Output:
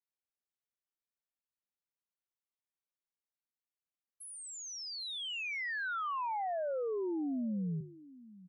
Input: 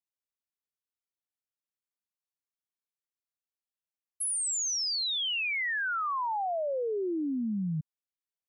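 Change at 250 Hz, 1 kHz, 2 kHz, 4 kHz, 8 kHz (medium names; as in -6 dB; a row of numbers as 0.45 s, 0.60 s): -4.0 dB, -5.0 dB, -6.5 dB, -10.0 dB, -15.0 dB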